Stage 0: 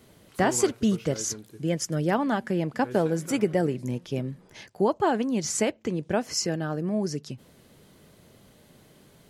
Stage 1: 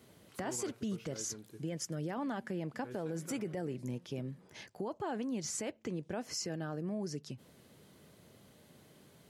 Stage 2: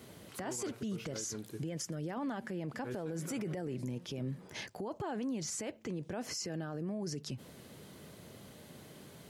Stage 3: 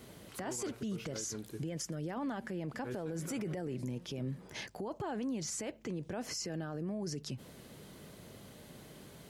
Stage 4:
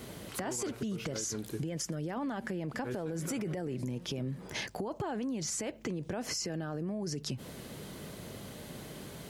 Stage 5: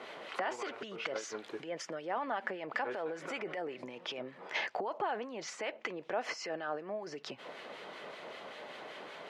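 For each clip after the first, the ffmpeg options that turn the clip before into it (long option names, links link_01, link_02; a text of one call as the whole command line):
ffmpeg -i in.wav -af "highpass=69,alimiter=limit=-20dB:level=0:latency=1:release=21,acompressor=threshold=-37dB:ratio=1.5,volume=-5dB" out.wav
ffmpeg -i in.wav -af "alimiter=level_in=14.5dB:limit=-24dB:level=0:latency=1:release=41,volume=-14.5dB,volume=7.5dB" out.wav
ffmpeg -i in.wav -af "aeval=exprs='val(0)+0.000447*(sin(2*PI*50*n/s)+sin(2*PI*2*50*n/s)/2+sin(2*PI*3*50*n/s)/3+sin(2*PI*4*50*n/s)/4+sin(2*PI*5*50*n/s)/5)':channel_layout=same" out.wav
ffmpeg -i in.wav -af "acompressor=threshold=-40dB:ratio=6,volume=7.5dB" out.wav
ffmpeg -i in.wav -filter_complex "[0:a]asuperpass=centerf=1300:order=4:qfactor=0.56,acrossover=split=1300[link_01][link_02];[link_01]aeval=exprs='val(0)*(1-0.5/2+0.5/2*cos(2*PI*5.2*n/s))':channel_layout=same[link_03];[link_02]aeval=exprs='val(0)*(1-0.5/2-0.5/2*cos(2*PI*5.2*n/s))':channel_layout=same[link_04];[link_03][link_04]amix=inputs=2:normalize=0,bandreject=frequency=1600:width=24,volume=8.5dB" out.wav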